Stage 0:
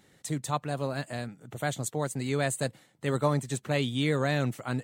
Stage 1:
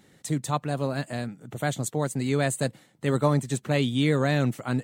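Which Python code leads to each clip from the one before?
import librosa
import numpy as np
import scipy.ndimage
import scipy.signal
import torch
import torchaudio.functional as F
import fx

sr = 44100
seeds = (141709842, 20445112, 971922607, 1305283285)

y = fx.peak_eq(x, sr, hz=220.0, db=4.0, octaves=1.6)
y = y * 10.0 ** (2.0 / 20.0)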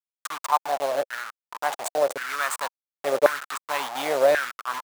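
y = fx.delta_hold(x, sr, step_db=-25.5)
y = fx.filter_lfo_highpass(y, sr, shape='saw_down', hz=0.92, low_hz=520.0, high_hz=1600.0, q=5.2)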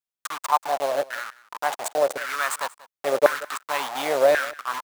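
y = x + 10.0 ** (-20.5 / 20.0) * np.pad(x, (int(185 * sr / 1000.0), 0))[:len(x)]
y = y * 10.0 ** (1.0 / 20.0)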